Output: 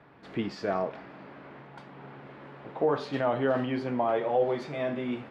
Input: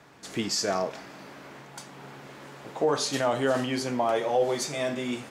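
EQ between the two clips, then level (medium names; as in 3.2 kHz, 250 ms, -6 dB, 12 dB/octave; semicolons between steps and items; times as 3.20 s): distance through air 420 m; 0.0 dB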